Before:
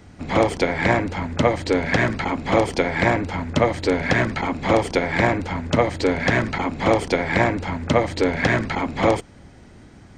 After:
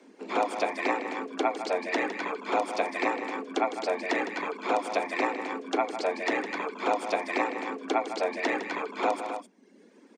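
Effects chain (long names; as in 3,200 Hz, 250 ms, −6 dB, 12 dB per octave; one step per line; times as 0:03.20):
reverb reduction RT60 1.1 s
loudspeakers that aren't time-aligned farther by 54 metres −10 dB, 89 metres −9 dB
frequency shifter +180 Hz
level −8.5 dB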